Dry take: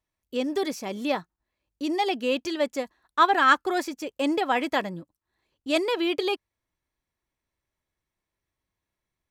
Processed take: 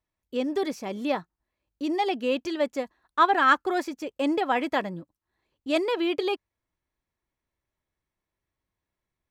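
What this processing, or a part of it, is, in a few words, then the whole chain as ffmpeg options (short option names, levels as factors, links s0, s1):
behind a face mask: -af "highshelf=f=3400:g=-7"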